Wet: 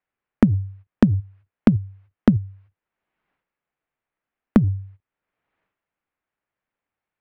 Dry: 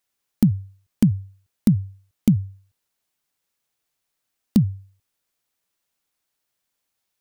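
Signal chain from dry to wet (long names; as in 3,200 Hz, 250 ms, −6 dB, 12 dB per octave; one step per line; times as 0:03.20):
low-pass filter 2,300 Hz 24 dB per octave
noise gate −50 dBFS, range −19 dB
0:01.19–0:04.64: parametric band 93 Hz −14 dB 0.21 octaves
transient designer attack +8 dB, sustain +12 dB
multiband upward and downward compressor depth 70%
level −3 dB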